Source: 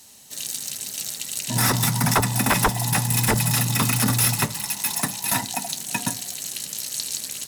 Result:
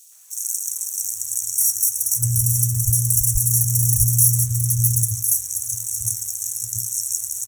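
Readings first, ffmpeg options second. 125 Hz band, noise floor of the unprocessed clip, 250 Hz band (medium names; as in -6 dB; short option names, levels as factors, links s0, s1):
+3.5 dB, -37 dBFS, under -10 dB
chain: -filter_complex "[0:a]afftfilt=real='re*(1-between(b*sr/4096,120,5500))':imag='im*(1-between(b*sr/4096,120,5500))':win_size=4096:overlap=0.75,aeval=exprs='sgn(val(0))*max(abs(val(0))-0.00211,0)':c=same,acrossover=split=630|2900[s0][s1][s2];[s1]adelay=120[s3];[s0]adelay=690[s4];[s4][s3][s2]amix=inputs=3:normalize=0,volume=2.11"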